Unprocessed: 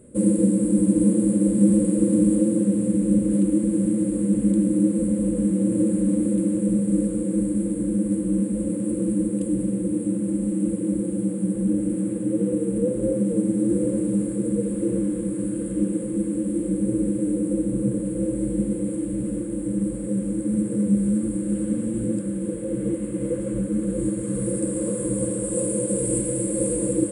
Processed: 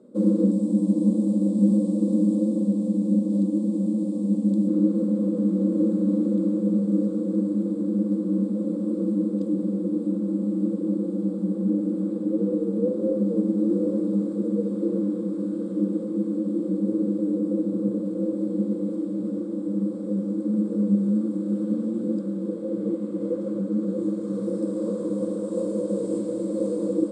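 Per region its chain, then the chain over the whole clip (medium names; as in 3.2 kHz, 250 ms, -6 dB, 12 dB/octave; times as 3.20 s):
0.51–4.68 s: treble shelf 6.6 kHz +8 dB + static phaser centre 400 Hz, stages 6
whole clip: elliptic band-pass 200–5200 Hz, stop band 40 dB; high-order bell 2.2 kHz -13.5 dB 1.1 oct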